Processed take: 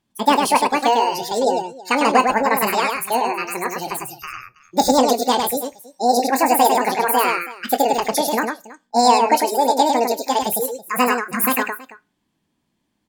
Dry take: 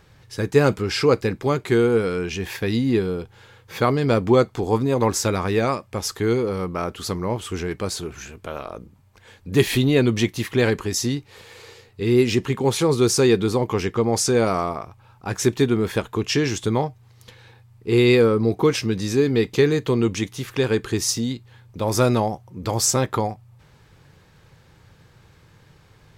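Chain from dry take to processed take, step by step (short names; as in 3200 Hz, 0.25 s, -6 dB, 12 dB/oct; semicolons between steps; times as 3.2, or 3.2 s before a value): spectral noise reduction 23 dB; on a send: tapped delay 48/203/649 ms -12.5/-4.5/-19.5 dB; on the sum: Schroeder reverb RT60 0.57 s, combs from 30 ms, DRR 18 dB; speed mistake 7.5 ips tape played at 15 ips; gain +1.5 dB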